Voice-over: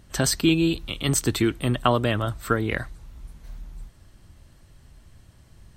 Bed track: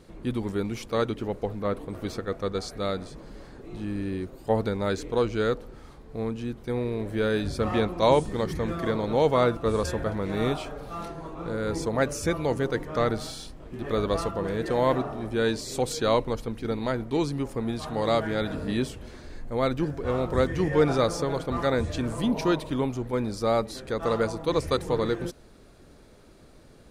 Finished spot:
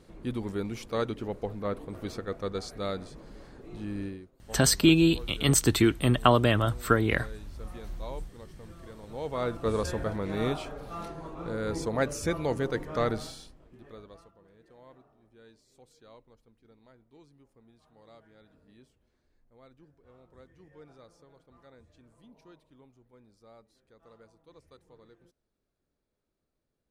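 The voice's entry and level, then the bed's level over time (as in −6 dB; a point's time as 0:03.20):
4.40 s, 0.0 dB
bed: 0:04.05 −4 dB
0:04.31 −21 dB
0:08.96 −21 dB
0:09.66 −3 dB
0:13.19 −3 dB
0:14.38 −31 dB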